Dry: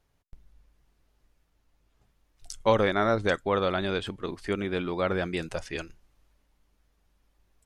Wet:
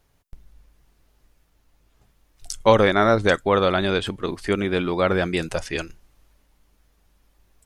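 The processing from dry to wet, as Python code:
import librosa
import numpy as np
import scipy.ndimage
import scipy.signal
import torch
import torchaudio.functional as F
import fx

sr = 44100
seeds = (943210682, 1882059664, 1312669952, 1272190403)

y = fx.high_shelf(x, sr, hz=8800.0, db=5.5)
y = y * 10.0 ** (7.0 / 20.0)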